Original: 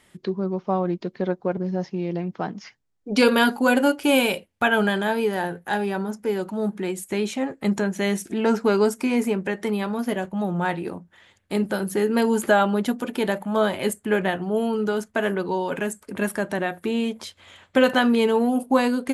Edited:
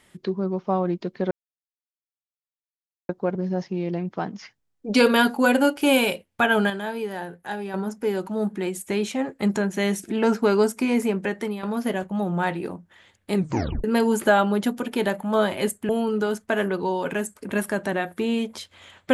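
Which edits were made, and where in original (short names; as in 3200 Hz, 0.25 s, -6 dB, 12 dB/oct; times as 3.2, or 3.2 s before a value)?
1.31 insert silence 1.78 s
4.92–5.96 gain -6.5 dB
9.58–9.85 fade out, to -10.5 dB
11.57 tape stop 0.49 s
14.11–14.55 cut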